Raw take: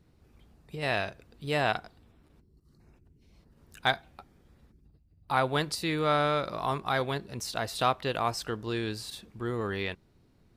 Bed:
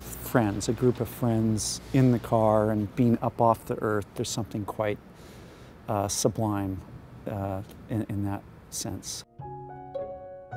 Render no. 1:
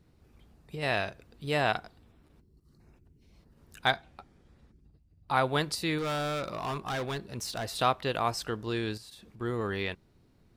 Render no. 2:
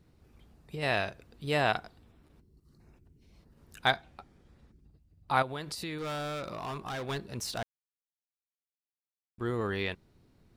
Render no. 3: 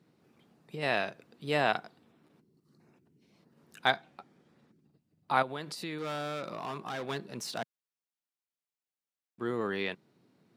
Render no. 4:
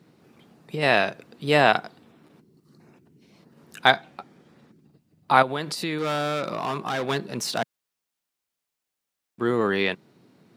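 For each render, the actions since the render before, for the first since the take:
3.91–5.35 LPF 9000 Hz; 5.98–7.79 hard clip -29.5 dBFS; 8.97–9.41 compressor 4:1, threshold -48 dBFS
5.42–7.09 compressor 4:1, threshold -35 dBFS; 7.63–9.38 mute
HPF 150 Hz 24 dB/oct; high shelf 6000 Hz -5 dB
gain +10 dB; limiter -1 dBFS, peak gain reduction 1 dB

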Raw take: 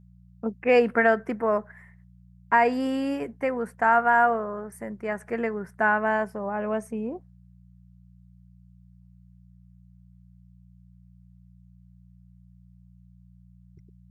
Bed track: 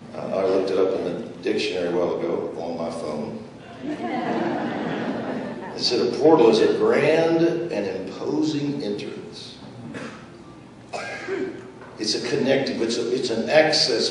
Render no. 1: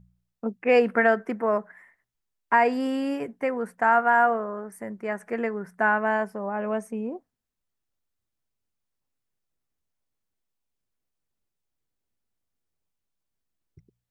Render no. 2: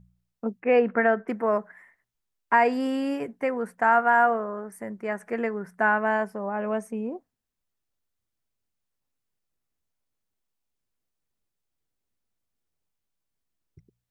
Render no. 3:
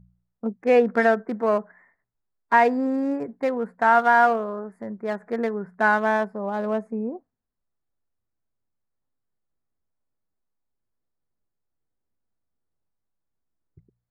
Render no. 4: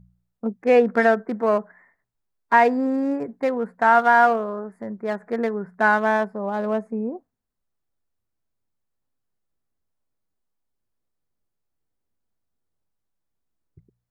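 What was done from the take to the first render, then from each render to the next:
de-hum 60 Hz, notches 3
0.6–1.28 air absorption 340 m
Wiener smoothing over 15 samples; harmonic-percussive split harmonic +3 dB
gain +1.5 dB

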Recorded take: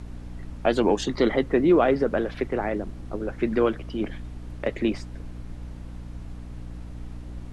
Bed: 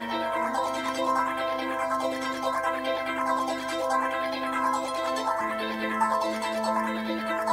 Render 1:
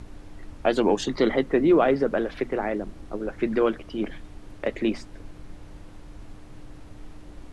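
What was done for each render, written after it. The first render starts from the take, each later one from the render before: notches 60/120/180/240 Hz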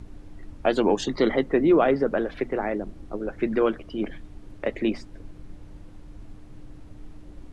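denoiser 6 dB, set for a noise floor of -45 dBFS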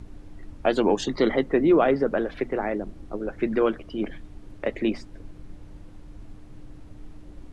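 nothing audible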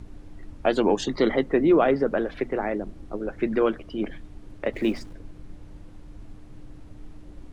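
4.73–5.13 G.711 law mismatch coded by mu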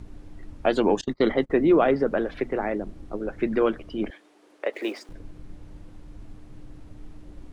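1.01–1.5 gate -29 dBFS, range -29 dB; 4.1–5.09 HPF 370 Hz 24 dB/oct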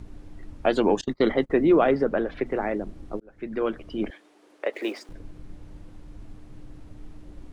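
2.05–2.46 high shelf 5200 Hz -7.5 dB; 3.2–3.92 fade in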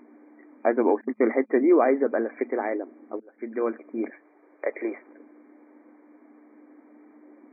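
notch 1400 Hz, Q 14; FFT band-pass 220–2400 Hz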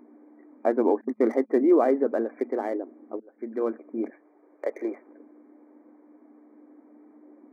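Wiener smoothing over 9 samples; bell 2100 Hz -7.5 dB 1.7 oct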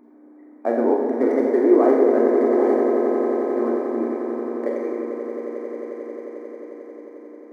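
swelling echo 89 ms, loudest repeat 8, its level -11.5 dB; Schroeder reverb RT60 1.2 s, combs from 30 ms, DRR -0.5 dB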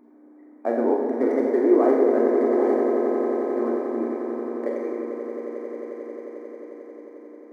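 gain -2.5 dB

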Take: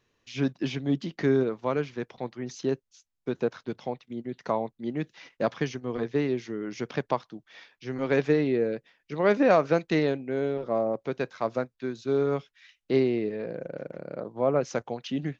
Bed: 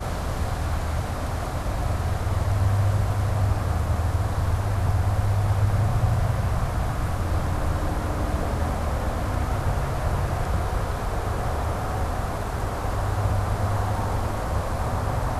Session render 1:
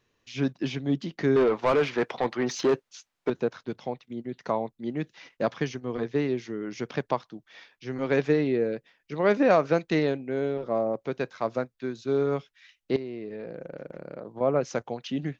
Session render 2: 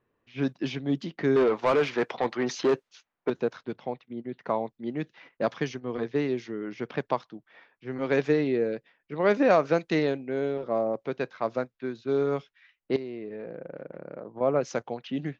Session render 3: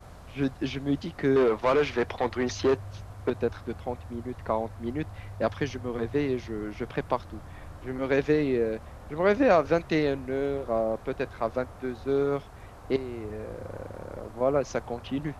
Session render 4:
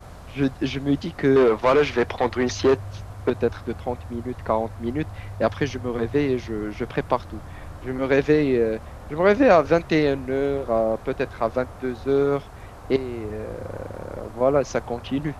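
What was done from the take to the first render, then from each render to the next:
1.36–3.3 overdrive pedal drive 24 dB, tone 2100 Hz, clips at -13.5 dBFS; 12.96–14.41 compressor 5:1, threshold -33 dBFS
low-pass opened by the level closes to 1400 Hz, open at -21.5 dBFS; low shelf 98 Hz -7.5 dB
add bed -19 dB
gain +5.5 dB

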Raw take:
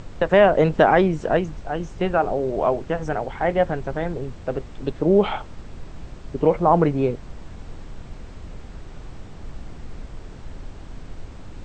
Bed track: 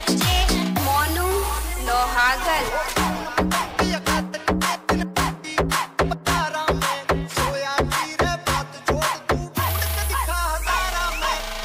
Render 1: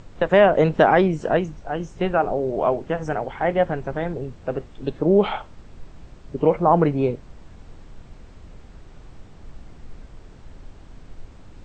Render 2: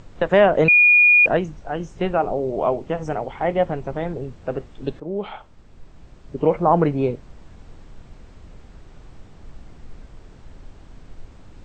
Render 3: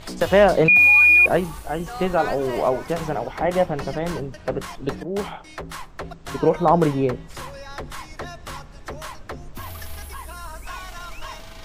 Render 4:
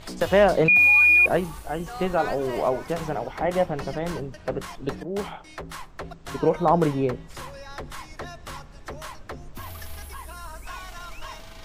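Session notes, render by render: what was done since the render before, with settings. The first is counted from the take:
noise print and reduce 6 dB
0.68–1.26 bleep 2440 Hz -9.5 dBFS; 2.1–4.08 bell 1600 Hz -7.5 dB 0.3 oct; 5–6.54 fade in, from -13.5 dB
add bed track -13.5 dB
gain -3 dB

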